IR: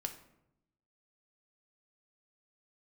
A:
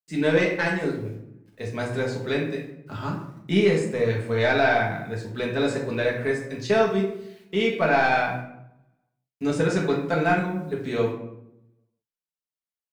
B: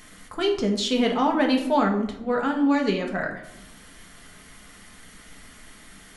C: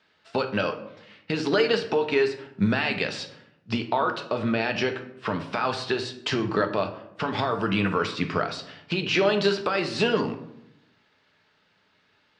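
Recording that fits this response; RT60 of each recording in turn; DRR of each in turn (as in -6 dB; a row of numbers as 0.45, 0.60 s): C; 0.80, 0.80, 0.80 s; -2.5, 1.5, 5.5 dB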